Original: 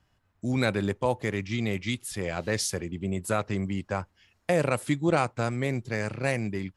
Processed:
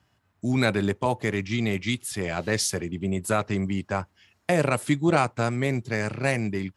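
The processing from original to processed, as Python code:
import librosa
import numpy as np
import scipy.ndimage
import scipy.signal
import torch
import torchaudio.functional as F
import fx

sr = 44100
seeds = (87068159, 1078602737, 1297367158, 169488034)

y = scipy.signal.sosfilt(scipy.signal.butter(2, 82.0, 'highpass', fs=sr, output='sos'), x)
y = fx.notch(y, sr, hz=510.0, q=12.0)
y = y * 10.0 ** (3.5 / 20.0)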